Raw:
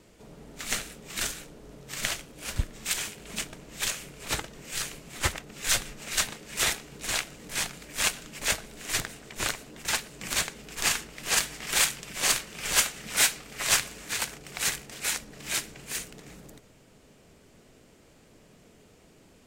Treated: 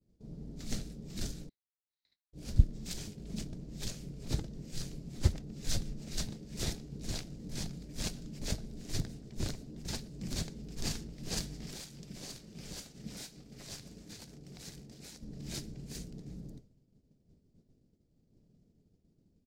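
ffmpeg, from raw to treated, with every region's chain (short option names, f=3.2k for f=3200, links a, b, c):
-filter_complex "[0:a]asettb=1/sr,asplit=3[a][b][c];[a]atrim=end=1.494[d];[b]atrim=start=1.49:end=2.33,asetpts=PTS-STARTPTS,afade=t=in:d=0.004:c=qsin,afade=t=out:st=0.836:d=0.004:c=qsin,bandpass=f=3k:t=q:w=8.9,aeval=exprs='val(0)*sin(2*PI*950*n/s)':c=same[e];[c]atrim=start=2.326[f];[d][e]acrossfade=d=0.004:c1=hsin:c2=qsin[g];[g][f]acrossfade=d=0.004:c1=qsin:c2=hsin,asettb=1/sr,asplit=3[h][i][j];[h]atrim=end=11.704[k];[i]atrim=start=11.7:end=15.23,asetpts=PTS-STARTPTS,afade=t=in:d=0.004:c=qsin,afade=t=out:st=3.526:d=0.004:c=qsin,lowshelf=f=93:g=-9,acompressor=threshold=-33dB:ratio=2.5:attack=3.2:release=140:knee=1:detection=peak[l];[j]atrim=start=15.226[m];[k][l]acrossfade=d=0.004:c1=hsin:c2=qsin[n];[n][m]acrossfade=d=0.004:c1=qsin:c2=hsin,firequalizer=gain_entry='entry(170,0);entry(460,-12);entry(1100,-26);entry(2800,-26);entry(4800,-15);entry(8300,-23)':delay=0.05:min_phase=1,agate=range=-33dB:threshold=-50dB:ratio=3:detection=peak,equalizer=f=4k:t=o:w=0.77:g=2.5,volume=5.5dB"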